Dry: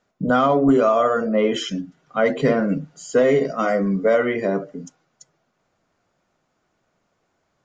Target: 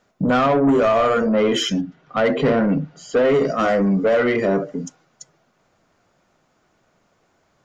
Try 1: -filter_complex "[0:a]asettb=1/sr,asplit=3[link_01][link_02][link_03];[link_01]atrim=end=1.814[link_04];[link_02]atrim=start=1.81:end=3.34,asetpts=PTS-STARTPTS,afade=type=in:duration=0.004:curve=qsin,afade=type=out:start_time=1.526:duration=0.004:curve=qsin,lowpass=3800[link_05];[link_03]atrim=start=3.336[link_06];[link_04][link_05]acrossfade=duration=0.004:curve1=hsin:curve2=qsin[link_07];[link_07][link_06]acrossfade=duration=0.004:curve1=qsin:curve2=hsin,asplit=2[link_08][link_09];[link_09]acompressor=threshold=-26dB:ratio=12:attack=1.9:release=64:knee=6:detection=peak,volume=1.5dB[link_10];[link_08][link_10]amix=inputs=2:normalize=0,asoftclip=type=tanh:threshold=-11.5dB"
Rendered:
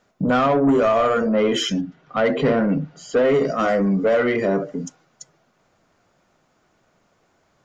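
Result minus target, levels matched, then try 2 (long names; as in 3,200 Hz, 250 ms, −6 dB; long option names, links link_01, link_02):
downward compressor: peak gain reduction +6 dB
-filter_complex "[0:a]asettb=1/sr,asplit=3[link_01][link_02][link_03];[link_01]atrim=end=1.814[link_04];[link_02]atrim=start=1.81:end=3.34,asetpts=PTS-STARTPTS,afade=type=in:duration=0.004:curve=qsin,afade=type=out:start_time=1.526:duration=0.004:curve=qsin,lowpass=3800[link_05];[link_03]atrim=start=3.336[link_06];[link_04][link_05]acrossfade=duration=0.004:curve1=hsin:curve2=qsin[link_07];[link_07][link_06]acrossfade=duration=0.004:curve1=qsin:curve2=hsin,asplit=2[link_08][link_09];[link_09]acompressor=threshold=-19.5dB:ratio=12:attack=1.9:release=64:knee=6:detection=peak,volume=1.5dB[link_10];[link_08][link_10]amix=inputs=2:normalize=0,asoftclip=type=tanh:threshold=-11.5dB"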